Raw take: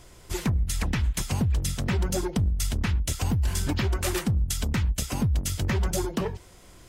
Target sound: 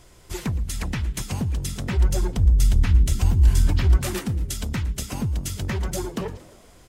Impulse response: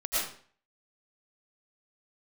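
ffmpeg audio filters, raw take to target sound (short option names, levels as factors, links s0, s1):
-filter_complex "[0:a]asplit=3[s0][s1][s2];[s0]afade=t=out:st=1.96:d=0.02[s3];[s1]asubboost=boost=8.5:cutoff=71,afade=t=in:st=1.96:d=0.02,afade=t=out:st=3.96:d=0.02[s4];[s2]afade=t=in:st=3.96:d=0.02[s5];[s3][s4][s5]amix=inputs=3:normalize=0,asplit=6[s6][s7][s8][s9][s10][s11];[s7]adelay=115,afreqshift=67,volume=0.112[s12];[s8]adelay=230,afreqshift=134,volume=0.0684[s13];[s9]adelay=345,afreqshift=201,volume=0.0417[s14];[s10]adelay=460,afreqshift=268,volume=0.0254[s15];[s11]adelay=575,afreqshift=335,volume=0.0155[s16];[s6][s12][s13][s14][s15][s16]amix=inputs=6:normalize=0,volume=0.891"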